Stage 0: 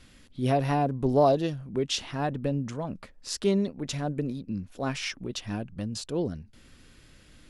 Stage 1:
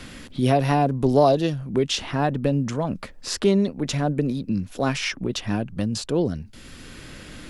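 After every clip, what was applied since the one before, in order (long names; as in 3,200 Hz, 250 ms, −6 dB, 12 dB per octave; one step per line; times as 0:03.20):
multiband upward and downward compressor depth 40%
level +6.5 dB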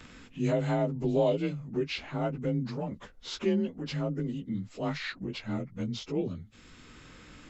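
partials spread apart or drawn together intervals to 90%
level −7.5 dB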